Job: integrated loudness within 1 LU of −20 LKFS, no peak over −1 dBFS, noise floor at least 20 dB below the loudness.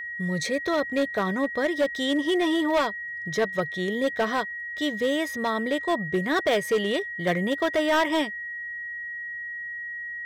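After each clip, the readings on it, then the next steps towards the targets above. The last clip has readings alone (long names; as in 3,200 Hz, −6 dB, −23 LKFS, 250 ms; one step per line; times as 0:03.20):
share of clipped samples 1.5%; peaks flattened at −17.5 dBFS; interfering tone 1,900 Hz; level of the tone −32 dBFS; integrated loudness −26.0 LKFS; sample peak −17.5 dBFS; target loudness −20.0 LKFS
→ clipped peaks rebuilt −17.5 dBFS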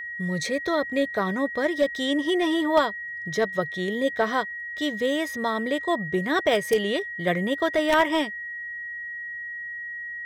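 share of clipped samples 0.0%; interfering tone 1,900 Hz; level of the tone −32 dBFS
→ notch filter 1,900 Hz, Q 30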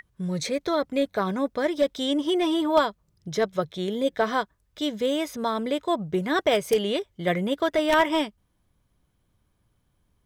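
interfering tone none found; integrated loudness −25.5 LKFS; sample peak −8.0 dBFS; target loudness −20.0 LKFS
→ level +5.5 dB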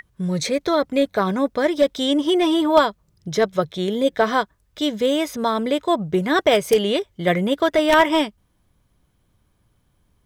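integrated loudness −20.0 LKFS; sample peak −2.5 dBFS; background noise floor −65 dBFS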